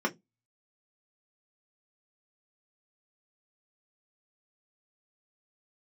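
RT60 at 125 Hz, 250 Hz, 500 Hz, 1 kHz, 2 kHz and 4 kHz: 0.30 s, 0.25 s, 0.20 s, 0.15 s, 0.10 s, 0.15 s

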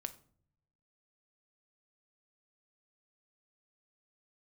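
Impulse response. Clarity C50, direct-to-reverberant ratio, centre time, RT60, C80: 15.5 dB, 9.5 dB, 4 ms, no single decay rate, 20.0 dB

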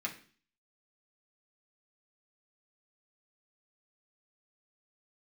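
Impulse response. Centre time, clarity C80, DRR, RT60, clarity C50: 14 ms, 16.0 dB, -2.5 dB, 0.45 s, 12.0 dB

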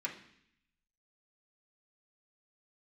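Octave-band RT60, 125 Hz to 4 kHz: 1.0 s, 0.90 s, 0.65 s, 0.65 s, 0.85 s, 0.80 s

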